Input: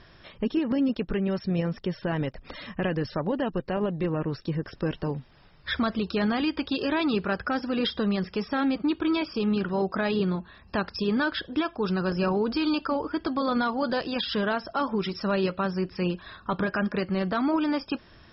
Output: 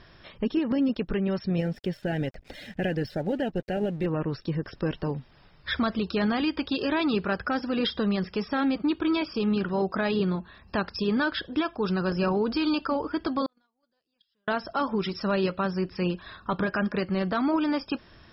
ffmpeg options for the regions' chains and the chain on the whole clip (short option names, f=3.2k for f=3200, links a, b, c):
-filter_complex "[0:a]asettb=1/sr,asplit=3[a][b][c];[a]atrim=end=1.584[d];[b]atrim=start=1.58:end=4.06,asetpts=PTS-STARTPTS,afade=t=in:d=0.004:c=qsin,afade=t=out:st=2.476:d=0.004:c=qsin,asuperstop=centerf=1100:order=8:qfactor=2,aeval=exprs='sgn(val(0))*max(abs(val(0))-0.00251,0)':c=same[e];[c]atrim=start=4.056[f];[d][e]acrossfade=d=0.004:c1=hsin:c2=qsin[g];[g][f]acrossfade=d=0.004:c1=qsin:c2=hsin,asettb=1/sr,asplit=3[h][i][j];[h]atrim=end=13.464[k];[i]atrim=start=13.46:end=14.48,asetpts=PTS-STARTPTS,afade=t=in:d=0.004:c=qsin,afade=t=out:st=1.016:d=0.004:c=qsin,aemphasis=mode=production:type=75kf,agate=range=-52dB:threshold=-19dB:ratio=16:release=100:detection=peak[l];[j]atrim=start=14.476[m];[k][l]acrossfade=d=0.004:c1=hsin:c2=qsin[n];[n][m]acrossfade=d=0.004:c1=qsin:c2=hsin"